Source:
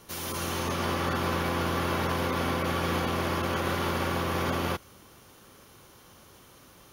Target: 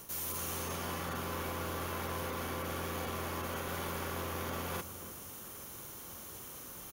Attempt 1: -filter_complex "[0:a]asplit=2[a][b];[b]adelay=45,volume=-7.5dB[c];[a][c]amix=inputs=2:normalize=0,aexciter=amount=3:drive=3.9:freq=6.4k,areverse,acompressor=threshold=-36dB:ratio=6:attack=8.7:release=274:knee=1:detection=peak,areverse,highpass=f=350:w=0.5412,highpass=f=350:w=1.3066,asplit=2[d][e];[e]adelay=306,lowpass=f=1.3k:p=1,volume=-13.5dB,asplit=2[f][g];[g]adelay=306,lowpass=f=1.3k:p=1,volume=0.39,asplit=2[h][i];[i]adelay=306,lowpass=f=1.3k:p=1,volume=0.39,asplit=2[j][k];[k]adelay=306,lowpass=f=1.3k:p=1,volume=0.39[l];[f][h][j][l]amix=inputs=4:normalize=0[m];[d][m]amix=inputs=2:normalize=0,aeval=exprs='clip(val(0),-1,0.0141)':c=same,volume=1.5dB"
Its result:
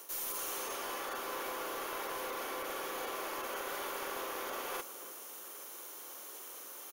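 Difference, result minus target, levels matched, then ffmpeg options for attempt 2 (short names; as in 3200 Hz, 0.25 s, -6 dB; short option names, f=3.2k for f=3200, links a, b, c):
250 Hz band -6.5 dB
-filter_complex "[0:a]asplit=2[a][b];[b]adelay=45,volume=-7.5dB[c];[a][c]amix=inputs=2:normalize=0,aexciter=amount=3:drive=3.9:freq=6.4k,areverse,acompressor=threshold=-36dB:ratio=6:attack=8.7:release=274:knee=1:detection=peak,areverse,asplit=2[d][e];[e]adelay=306,lowpass=f=1.3k:p=1,volume=-13.5dB,asplit=2[f][g];[g]adelay=306,lowpass=f=1.3k:p=1,volume=0.39,asplit=2[h][i];[i]adelay=306,lowpass=f=1.3k:p=1,volume=0.39,asplit=2[j][k];[k]adelay=306,lowpass=f=1.3k:p=1,volume=0.39[l];[f][h][j][l]amix=inputs=4:normalize=0[m];[d][m]amix=inputs=2:normalize=0,aeval=exprs='clip(val(0),-1,0.0141)':c=same,volume=1.5dB"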